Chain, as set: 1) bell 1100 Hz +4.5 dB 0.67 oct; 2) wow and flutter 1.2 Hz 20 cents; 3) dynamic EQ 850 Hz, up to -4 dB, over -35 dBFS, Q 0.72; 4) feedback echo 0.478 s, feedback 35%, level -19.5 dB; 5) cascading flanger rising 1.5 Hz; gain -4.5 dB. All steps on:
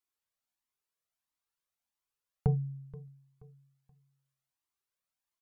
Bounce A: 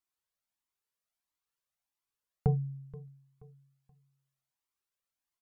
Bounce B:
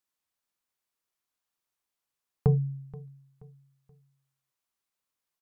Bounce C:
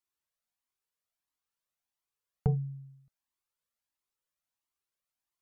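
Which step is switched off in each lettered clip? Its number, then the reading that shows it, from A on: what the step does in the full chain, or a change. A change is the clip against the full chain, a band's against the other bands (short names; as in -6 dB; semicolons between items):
3, 1 kHz band +2.5 dB; 5, 1 kHz band -3.0 dB; 4, momentary loudness spread change -5 LU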